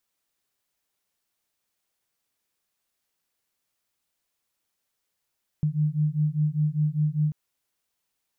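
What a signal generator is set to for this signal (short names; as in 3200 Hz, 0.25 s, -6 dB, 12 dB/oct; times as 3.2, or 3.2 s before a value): beating tones 149 Hz, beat 5 Hz, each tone -24.5 dBFS 1.69 s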